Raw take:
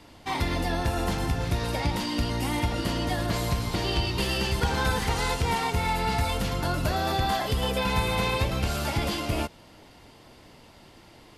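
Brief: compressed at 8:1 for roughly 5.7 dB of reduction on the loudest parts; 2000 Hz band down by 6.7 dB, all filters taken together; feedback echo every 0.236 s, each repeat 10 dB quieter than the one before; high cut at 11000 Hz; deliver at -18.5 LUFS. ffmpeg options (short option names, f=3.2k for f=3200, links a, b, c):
-af "lowpass=11k,equalizer=f=2k:t=o:g=-9,acompressor=threshold=-27dB:ratio=8,aecho=1:1:236|472|708|944:0.316|0.101|0.0324|0.0104,volume=13.5dB"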